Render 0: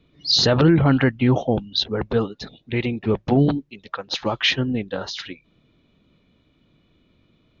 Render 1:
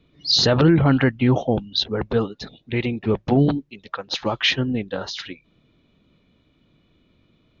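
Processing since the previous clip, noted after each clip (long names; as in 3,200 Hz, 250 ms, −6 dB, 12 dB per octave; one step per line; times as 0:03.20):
no processing that can be heard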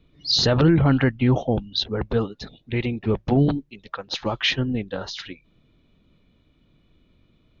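low-shelf EQ 62 Hz +12 dB
level −2.5 dB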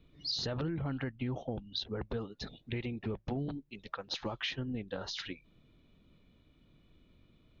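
downward compressor 5 to 1, threshold −31 dBFS, peak gain reduction 16.5 dB
level −4 dB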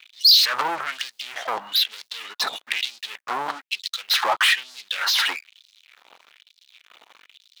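leveller curve on the samples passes 5
auto-filter high-pass sine 1.1 Hz 890–4,500 Hz
level +6 dB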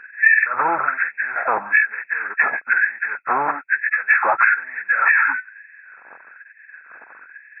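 hearing-aid frequency compression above 1,300 Hz 4 to 1
time-frequency box erased 0:05.18–0:05.77, 320–800 Hz
downward compressor 5 to 1, threshold −20 dBFS, peak gain reduction 14.5 dB
level +7.5 dB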